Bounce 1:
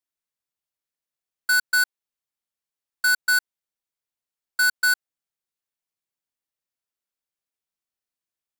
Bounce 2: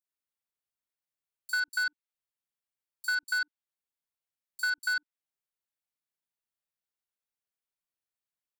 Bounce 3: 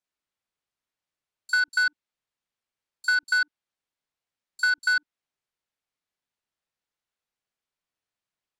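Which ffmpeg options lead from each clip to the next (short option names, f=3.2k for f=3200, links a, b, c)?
-filter_complex "[0:a]acrossover=split=670|1500|6000[a][b][c][d];[a]acompressor=threshold=-59dB:ratio=4[e];[b]acompressor=threshold=-33dB:ratio=4[f];[c]acompressor=threshold=-25dB:ratio=4[g];[d]acompressor=threshold=-44dB:ratio=4[h];[e][f][g][h]amix=inputs=4:normalize=0,acrossover=split=310|5900[i][j][k];[j]adelay=40[l];[i]adelay=90[m];[m][l][k]amix=inputs=3:normalize=0,volume=-4.5dB"
-af "adynamicsmooth=sensitivity=2.5:basefreq=7.1k,volume=7dB"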